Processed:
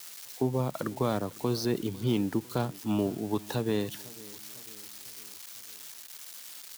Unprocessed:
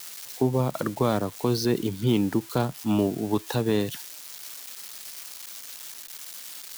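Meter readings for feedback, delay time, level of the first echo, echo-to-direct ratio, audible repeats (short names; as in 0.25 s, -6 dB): 52%, 0.501 s, -21.0 dB, -19.5 dB, 3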